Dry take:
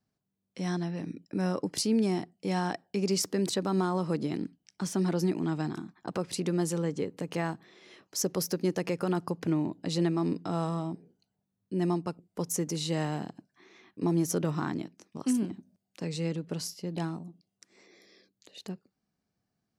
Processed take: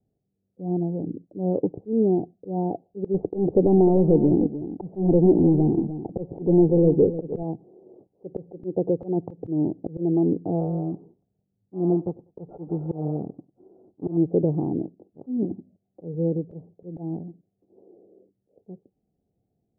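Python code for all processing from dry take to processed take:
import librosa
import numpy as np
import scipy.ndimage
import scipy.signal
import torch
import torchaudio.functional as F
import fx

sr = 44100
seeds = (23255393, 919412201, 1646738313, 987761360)

y = fx.chain(x, sr, fx.leveller(passes=2),
    fx.echo_single(ms=303, db=-12.5), at=(3.14, 7.43))
y = fx.chain(y, sr, fx.sample_sort(block=32),
    fx.echo_feedback(ms=97, feedback_pct=27, wet_db=-22), at=(10.6, 14.17))
y = scipy.signal.sosfilt(scipy.signal.butter(8, 710.0, 'lowpass', fs=sr, output='sos'), y)
y = fx.auto_swell(y, sr, attack_ms=158.0)
y = y + 0.32 * np.pad(y, (int(2.4 * sr / 1000.0), 0))[:len(y)]
y = y * librosa.db_to_amplitude(8.5)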